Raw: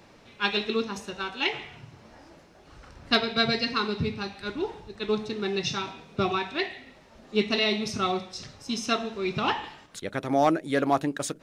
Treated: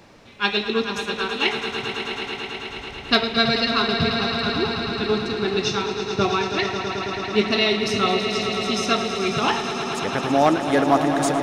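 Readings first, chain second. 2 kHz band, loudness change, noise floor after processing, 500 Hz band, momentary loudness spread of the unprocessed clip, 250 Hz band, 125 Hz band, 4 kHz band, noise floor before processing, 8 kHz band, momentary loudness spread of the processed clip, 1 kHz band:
+7.0 dB, +6.0 dB, -36 dBFS, +6.5 dB, 11 LU, +6.5 dB, +6.5 dB, +7.0 dB, -54 dBFS, +6.5 dB, 8 LU, +7.0 dB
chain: echo with a slow build-up 109 ms, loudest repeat 5, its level -10.5 dB; trim +4.5 dB

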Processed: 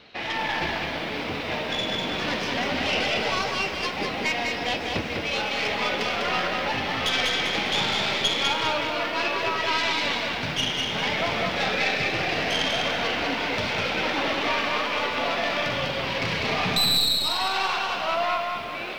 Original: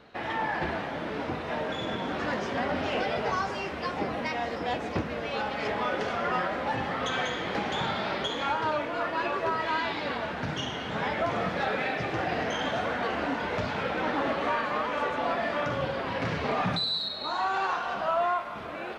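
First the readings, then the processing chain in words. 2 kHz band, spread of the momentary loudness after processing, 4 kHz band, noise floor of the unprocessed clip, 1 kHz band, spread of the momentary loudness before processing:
+6.5 dB, 5 LU, +11.0 dB, -36 dBFS, +1.5 dB, 4 LU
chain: tracing distortion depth 0.093 ms; high-order bell 3.5 kHz +10.5 dB; bit-crushed delay 199 ms, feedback 35%, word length 9-bit, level -4 dB

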